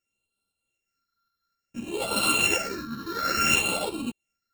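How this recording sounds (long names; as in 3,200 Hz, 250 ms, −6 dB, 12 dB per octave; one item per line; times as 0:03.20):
a buzz of ramps at a fixed pitch in blocks of 32 samples
phaser sweep stages 6, 0.58 Hz, lowest notch 690–1,700 Hz
tremolo saw up 3.9 Hz, depth 35%
a shimmering, thickened sound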